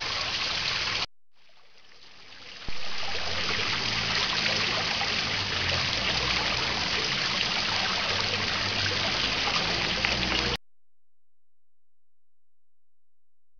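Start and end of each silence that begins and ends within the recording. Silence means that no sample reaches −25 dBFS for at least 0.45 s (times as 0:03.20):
0:01.05–0:02.69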